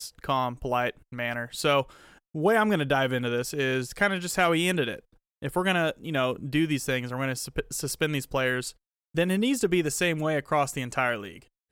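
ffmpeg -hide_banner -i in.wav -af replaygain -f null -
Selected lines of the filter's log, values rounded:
track_gain = +7.0 dB
track_peak = 0.206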